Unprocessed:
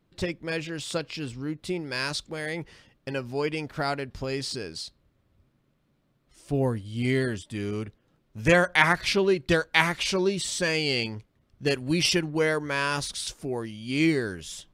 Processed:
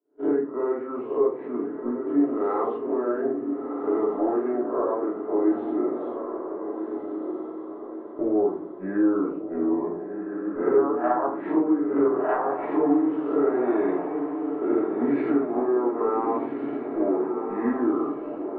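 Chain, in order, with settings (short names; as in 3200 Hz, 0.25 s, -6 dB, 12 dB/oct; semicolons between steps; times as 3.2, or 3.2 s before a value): spectral swells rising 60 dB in 0.35 s; HPF 470 Hz 24 dB/oct; gate -42 dBFS, range -25 dB; LPF 1300 Hz 24 dB/oct; tilt shelf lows +4.5 dB; compressor 6:1, threshold -32 dBFS, peak gain reduction 15 dB; wide varispeed 0.793×; diffused feedback echo 1.424 s, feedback 46%, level -6 dB; shoebox room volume 320 m³, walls furnished, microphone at 2.9 m; gain +6 dB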